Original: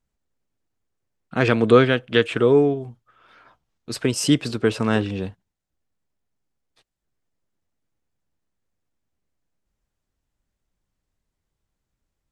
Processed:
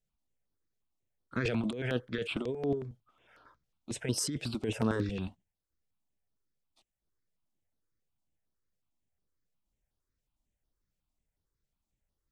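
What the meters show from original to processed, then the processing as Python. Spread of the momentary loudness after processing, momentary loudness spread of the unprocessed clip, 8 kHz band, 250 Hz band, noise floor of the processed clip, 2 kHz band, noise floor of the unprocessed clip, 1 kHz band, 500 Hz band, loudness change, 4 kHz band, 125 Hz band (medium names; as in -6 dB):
8 LU, 15 LU, -7.0 dB, -13.0 dB, under -85 dBFS, -14.0 dB, -81 dBFS, -16.5 dB, -17.0 dB, -14.5 dB, -12.5 dB, -11.5 dB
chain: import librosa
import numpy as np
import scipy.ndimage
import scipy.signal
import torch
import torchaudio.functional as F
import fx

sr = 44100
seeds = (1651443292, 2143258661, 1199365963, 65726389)

y = fx.over_compress(x, sr, threshold_db=-21.0, ratio=-1.0)
y = fx.phaser_held(y, sr, hz=11.0, low_hz=280.0, high_hz=7400.0)
y = y * 10.0 ** (-8.5 / 20.0)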